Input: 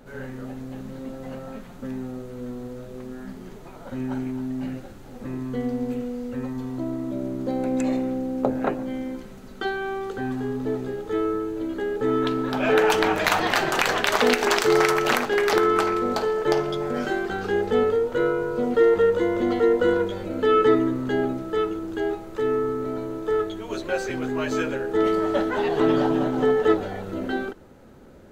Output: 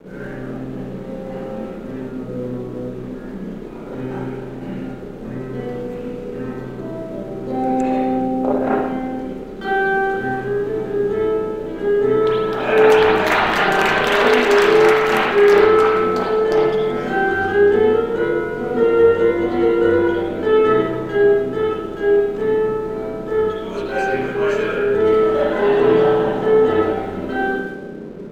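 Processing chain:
noise in a band 160–480 Hz −38 dBFS
spring reverb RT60 1 s, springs 32/54/59 ms, chirp 55 ms, DRR −9 dB
dead-zone distortion −45 dBFS
level −3.5 dB

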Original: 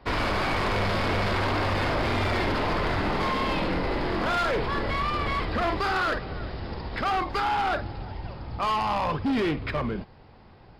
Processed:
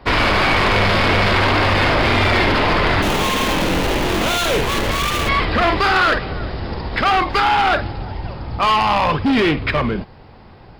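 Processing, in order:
0:03.02–0:05.29: gap after every zero crossing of 0.27 ms
dynamic equaliser 2,700 Hz, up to +5 dB, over −41 dBFS, Q 0.84
level +9 dB

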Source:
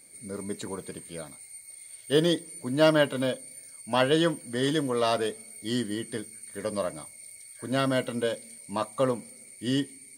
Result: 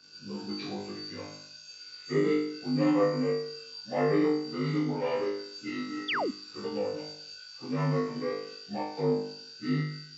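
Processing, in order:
partials spread apart or drawn together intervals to 82%
dynamic equaliser 2,200 Hz, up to −5 dB, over −41 dBFS, Q 0.7
in parallel at 0 dB: downward compressor, threshold −34 dBFS, peak gain reduction 16 dB
0:05.69–0:06.22: on the sum: low-shelf EQ 430 Hz −9.5 dB
on a send: flutter between parallel walls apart 3.4 metres, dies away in 0.64 s
0:06.08–0:06.31: on the sum: sound drawn into the spectrogram fall 220–3,800 Hz −21 dBFS
level −8.5 dB

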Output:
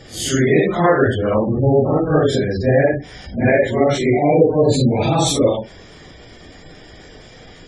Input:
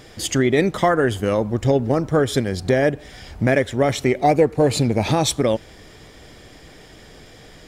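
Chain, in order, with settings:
random phases in long frames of 200 ms
gate on every frequency bin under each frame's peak −25 dB strong
level +3.5 dB

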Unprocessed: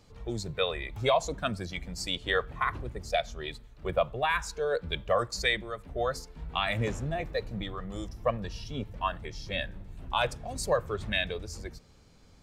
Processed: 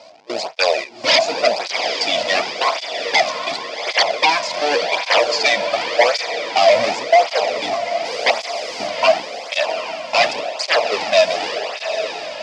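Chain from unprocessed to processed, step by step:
linear delta modulator 64 kbit/s, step −30 dBFS
notch filter 1,200 Hz, Q 14
noise gate with hold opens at −25 dBFS
parametric band 680 Hz +13 dB 0.98 octaves
in parallel at −10.5 dB: bit reduction 4 bits
0:08.04–0:08.86: on the sum: background noise white −40 dBFS
sine wavefolder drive 13 dB, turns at −4 dBFS
loudspeaker in its box 380–6,200 Hz, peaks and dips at 390 Hz −6 dB, 640 Hz +5 dB, 1,600 Hz −6 dB, 2,400 Hz +6 dB, 4,900 Hz +9 dB
on a send: feedback delay with all-pass diffusion 774 ms, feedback 57%, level −7 dB
on the sum: through-zero flanger with one copy inverted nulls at 0.89 Hz, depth 2.7 ms
level −4.5 dB

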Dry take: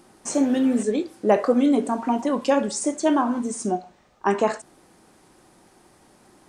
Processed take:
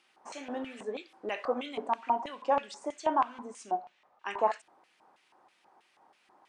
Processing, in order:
auto-filter band-pass square 3.1 Hz 910–2,700 Hz

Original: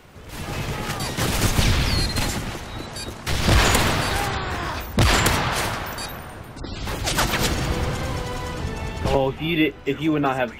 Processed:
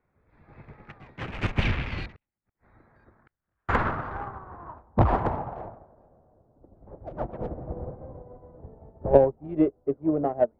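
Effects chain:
adaptive Wiener filter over 15 samples
low-pass filter sweep 2,500 Hz → 620 Hz, 0:02.13–0:06.05
0:02.14–0:03.69: gate with flip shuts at −19 dBFS, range −41 dB
in parallel at −9 dB: soft clipping −13.5 dBFS, distortion −14 dB
on the sum: expander for the loud parts 2.5 to 1, over −28 dBFS
level −1 dB

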